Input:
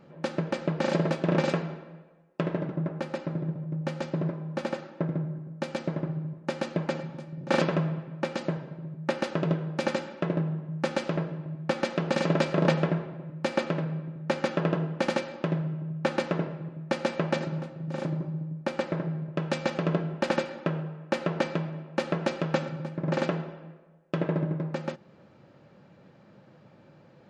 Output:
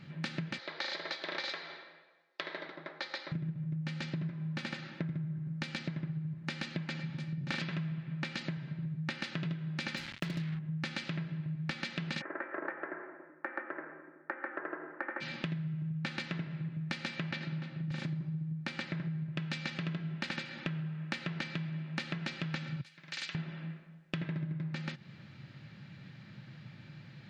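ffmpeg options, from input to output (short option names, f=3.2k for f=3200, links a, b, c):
-filter_complex "[0:a]asettb=1/sr,asplit=3[a][b][c];[a]atrim=end=0.584[d];[b]atrim=start=0.58:end=3.32,asetpts=PTS-STARTPTS,afade=t=in:d=0.004:c=qsin,afade=t=out:st=2.736:d=0.004:c=qsin,highpass=f=430:w=0.5412,highpass=f=430:w=1.3066,equalizer=f=1.5k:t=q:w=4:g=-3,equalizer=f=2.7k:t=q:w=4:g=-10,equalizer=f=4k:t=q:w=4:g=5,lowpass=f=5.9k:w=0.5412,lowpass=f=5.9k:w=1.3066[e];[c]atrim=start=3.316[f];[d][e]acrossfade=d=0.004:c1=hsin:c2=qsin[g];[g][f]acrossfade=d=0.004:c1=qsin:c2=hsin,asettb=1/sr,asplit=3[h][i][j];[h]atrim=end=9.974[k];[i]atrim=start=9.97:end=10.59,asetpts=PTS-STARTPTS,afade=t=in:d=0.004:c=qsin,afade=t=out:st=0.616:d=0.004:c=qsin,acrusher=bits=5:mix=0:aa=0.5[l];[j]atrim=start=10.586[m];[k][l]acrossfade=d=0.004:c1=hsin:c2=qsin[n];[n][m]acrossfade=d=0.004:c1=qsin:c2=hsin,asplit=3[o][p][q];[o]afade=t=out:st=12.2:d=0.02[r];[p]asuperpass=centerf=740:order=12:qfactor=0.5,afade=t=in:st=12.2:d=0.02,afade=t=out:st=15.2:d=0.02[s];[q]afade=t=in:st=15.2:d=0.02[t];[r][s][t]amix=inputs=3:normalize=0,asettb=1/sr,asplit=3[u][v][w];[u]atrim=end=17.314[x];[v]atrim=start=17.31:end=17.91,asetpts=PTS-STARTPTS,afade=t=in:d=0.004:c=qsin,afade=t=out:st=0.596:d=0.004:c=qsin,highpass=160,lowpass=4.7k[y];[w]atrim=start=17.906[z];[x][y]acrossfade=d=0.004:c1=hsin:c2=qsin[aa];[aa][z]acrossfade=d=0.004:c1=qsin:c2=hsin,asettb=1/sr,asplit=3[ab][ac][ad];[ab]atrim=end=22.814[ae];[ac]atrim=start=22.81:end=23.35,asetpts=PTS-STARTPTS,afade=t=in:d=0.004:c=qsin,afade=t=out:st=0.536:d=0.004:c=qsin,aderivative[af];[ad]atrim=start=23.346[ag];[ae][af]acrossfade=d=0.004:c1=hsin:c2=qsin[ah];[ah][ag]acrossfade=d=0.004:c1=qsin:c2=hsin,equalizer=f=125:t=o:w=1:g=11,equalizer=f=500:t=o:w=1:g=-12,equalizer=f=1k:t=o:w=1:g=-4,equalizer=f=2k:t=o:w=1:g=9,equalizer=f=4k:t=o:w=1:g=10,acompressor=threshold=-35dB:ratio=6"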